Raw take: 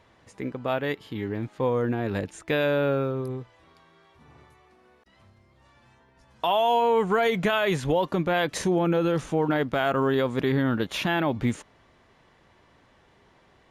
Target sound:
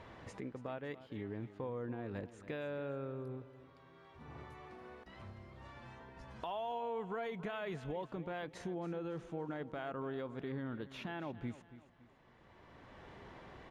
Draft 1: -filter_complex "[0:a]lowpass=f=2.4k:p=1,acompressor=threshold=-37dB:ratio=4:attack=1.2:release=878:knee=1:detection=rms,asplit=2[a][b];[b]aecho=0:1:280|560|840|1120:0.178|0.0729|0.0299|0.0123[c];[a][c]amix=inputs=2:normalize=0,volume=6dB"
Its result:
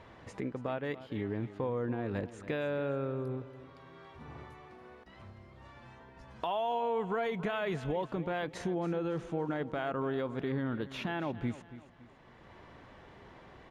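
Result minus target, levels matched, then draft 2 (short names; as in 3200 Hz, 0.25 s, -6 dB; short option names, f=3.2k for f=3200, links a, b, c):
compressor: peak gain reduction -7.5 dB
-filter_complex "[0:a]lowpass=f=2.4k:p=1,acompressor=threshold=-47dB:ratio=4:attack=1.2:release=878:knee=1:detection=rms,asplit=2[a][b];[b]aecho=0:1:280|560|840|1120:0.178|0.0729|0.0299|0.0123[c];[a][c]amix=inputs=2:normalize=0,volume=6dB"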